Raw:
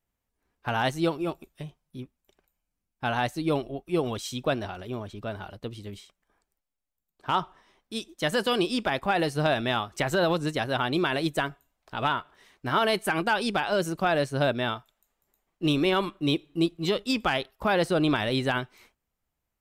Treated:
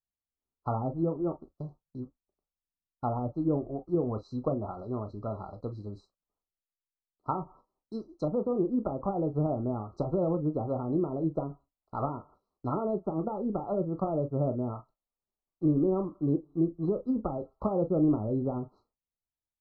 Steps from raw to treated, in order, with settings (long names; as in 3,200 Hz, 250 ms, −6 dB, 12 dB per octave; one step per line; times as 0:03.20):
noise gate −49 dBFS, range −18 dB
treble cut that deepens with the level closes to 470 Hz, closed at −23 dBFS
dynamic equaliser 1,300 Hz, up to +4 dB, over −45 dBFS, Q 1.3
linear-phase brick-wall band-stop 1,400–3,900 Hz
head-to-tape spacing loss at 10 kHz 29 dB
convolution reverb, pre-delay 15 ms, DRR 9 dB